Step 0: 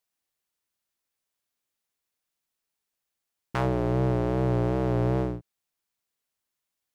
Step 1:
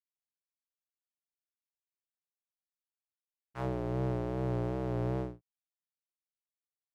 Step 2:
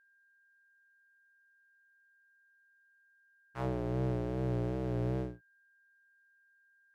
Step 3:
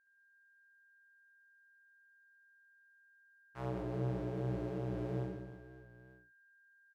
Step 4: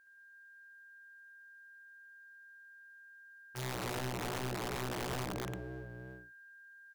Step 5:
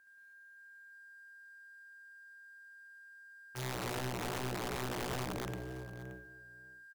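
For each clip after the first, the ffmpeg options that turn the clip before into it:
-af "agate=range=0.0224:threshold=0.0891:ratio=3:detection=peak,volume=0.473"
-af "adynamicequalizer=threshold=0.00316:dfrequency=1000:dqfactor=1.1:tfrequency=1000:tqfactor=1.1:attack=5:release=100:ratio=0.375:range=3:mode=cutabove:tftype=bell,aeval=exprs='val(0)+0.000501*sin(2*PI*1600*n/s)':c=same"
-af "aecho=1:1:70|175|332.5|568.8|923.1:0.631|0.398|0.251|0.158|0.1,volume=0.473"
-af "acompressor=threshold=0.00708:ratio=16,aeval=exprs='(mod(133*val(0)+1,2)-1)/133':c=same,volume=3.35"
-filter_complex "[0:a]acrossover=split=380|2500[s0][s1][s2];[s1]acrusher=bits=5:mode=log:mix=0:aa=0.000001[s3];[s0][s3][s2]amix=inputs=3:normalize=0,aecho=1:1:575:0.15"

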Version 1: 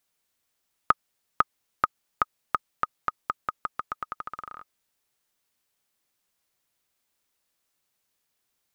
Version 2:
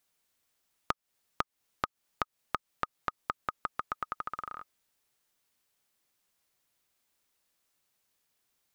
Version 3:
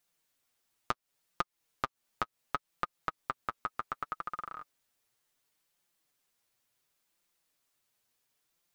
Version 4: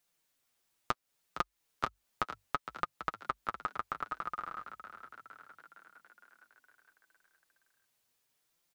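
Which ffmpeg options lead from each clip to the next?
-af "acompressor=threshold=0.0398:ratio=12"
-af "flanger=delay=5.7:depth=3:regen=24:speed=0.69:shape=sinusoidal,volume=1.33"
-filter_complex "[0:a]asplit=8[s0][s1][s2][s3][s4][s5][s6][s7];[s1]adelay=461,afreqshift=48,volume=0.282[s8];[s2]adelay=922,afreqshift=96,volume=0.172[s9];[s3]adelay=1383,afreqshift=144,volume=0.105[s10];[s4]adelay=1844,afreqshift=192,volume=0.0638[s11];[s5]adelay=2305,afreqshift=240,volume=0.0389[s12];[s6]adelay=2766,afreqshift=288,volume=0.0237[s13];[s7]adelay=3227,afreqshift=336,volume=0.0145[s14];[s0][s8][s9][s10][s11][s12][s13][s14]amix=inputs=8:normalize=0"

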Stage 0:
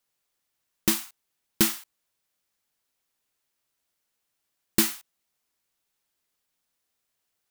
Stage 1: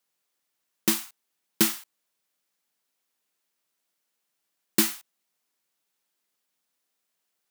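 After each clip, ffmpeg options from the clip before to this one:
-af "highpass=f=150:w=0.5412,highpass=f=150:w=1.3066"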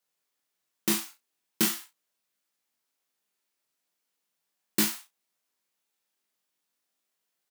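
-filter_complex "[0:a]flanger=delay=19:depth=5.2:speed=0.43,asplit=2[s0][s1];[s1]aecho=0:1:38|71:0.447|0.141[s2];[s0][s2]amix=inputs=2:normalize=0"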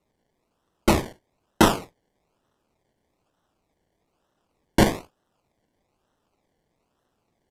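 -af "acrusher=samples=27:mix=1:aa=0.000001:lfo=1:lforange=16.2:lforate=1.1,volume=2.51" -ar 32000 -c:a sbc -b:a 128k

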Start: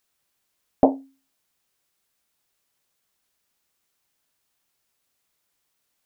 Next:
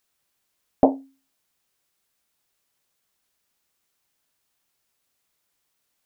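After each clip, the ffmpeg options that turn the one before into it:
-af anull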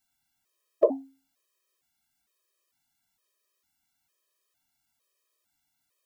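-af "afftfilt=real='re*gt(sin(2*PI*1.1*pts/sr)*(1-2*mod(floor(b*sr/1024/330),2)),0)':imag='im*gt(sin(2*PI*1.1*pts/sr)*(1-2*mod(floor(b*sr/1024/330),2)),0)':win_size=1024:overlap=0.75"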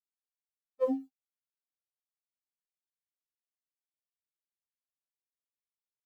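-af "aeval=exprs='sgn(val(0))*max(abs(val(0))-0.00224,0)':c=same,afftfilt=real='re*3.46*eq(mod(b,12),0)':imag='im*3.46*eq(mod(b,12),0)':win_size=2048:overlap=0.75,volume=0.841"

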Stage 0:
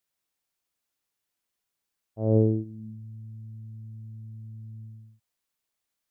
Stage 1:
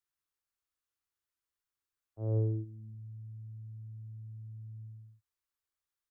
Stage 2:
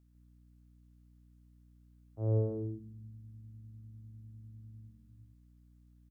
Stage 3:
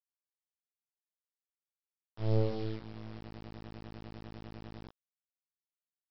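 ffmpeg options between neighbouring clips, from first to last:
-filter_complex "[0:a]firequalizer=gain_entry='entry(110,0);entry(160,-17);entry(330,-5);entry(640,-11);entry(1200,-1);entry(2300,-7)':delay=0.05:min_phase=1,acrossover=split=130|410[s0][s1][s2];[s1]alimiter=level_in=3.16:limit=0.0631:level=0:latency=1,volume=0.316[s3];[s0][s3][s2]amix=inputs=3:normalize=0,volume=0.708"
-af "aeval=exprs='val(0)+0.000501*(sin(2*PI*60*n/s)+sin(2*PI*2*60*n/s)/2+sin(2*PI*3*60*n/s)/3+sin(2*PI*4*60*n/s)/4+sin(2*PI*5*60*n/s)/5)':c=same,aecho=1:1:150:0.596,volume=1.26"
-filter_complex "[0:a]aresample=11025,acrusher=bits=5:dc=4:mix=0:aa=0.000001,aresample=44100,asplit=2[s0][s1];[s1]adelay=18,volume=0.75[s2];[s0][s2]amix=inputs=2:normalize=0"

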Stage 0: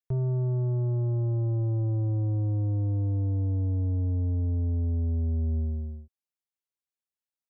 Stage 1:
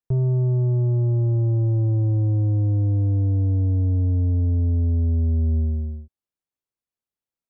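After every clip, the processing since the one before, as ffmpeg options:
-af "tiltshelf=f=970:g=5.5,volume=1.19"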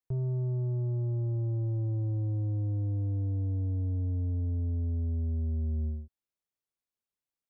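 -af "alimiter=level_in=1.12:limit=0.0631:level=0:latency=1,volume=0.891,volume=0.668"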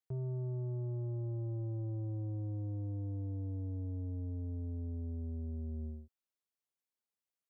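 -af "highpass=f=150:p=1,volume=0.668"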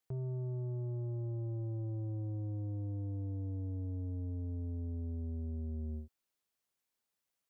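-af "alimiter=level_in=5.31:limit=0.0631:level=0:latency=1:release=70,volume=0.188,volume=2"

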